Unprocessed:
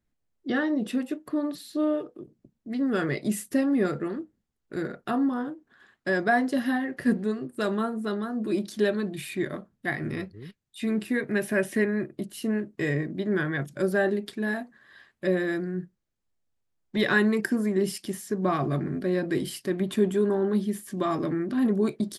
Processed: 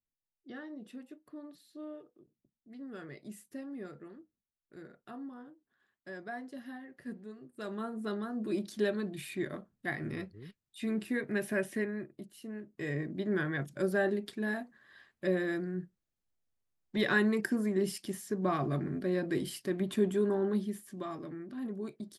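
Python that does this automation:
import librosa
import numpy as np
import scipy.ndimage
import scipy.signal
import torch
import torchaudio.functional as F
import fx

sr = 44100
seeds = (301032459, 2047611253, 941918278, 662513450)

y = fx.gain(x, sr, db=fx.line((7.33, -19.0), (8.05, -6.5), (11.52, -6.5), (12.5, -16.0), (13.09, -5.5), (20.49, -5.5), (21.23, -15.0)))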